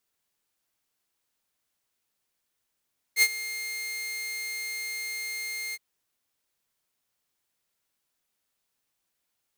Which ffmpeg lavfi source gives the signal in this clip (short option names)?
-f lavfi -i "aevalsrc='0.224*(2*mod(2120*t,1)-1)':d=2.618:s=44100,afade=t=in:d=0.062,afade=t=out:st=0.062:d=0.053:silence=0.15,afade=t=out:st=2.58:d=0.038"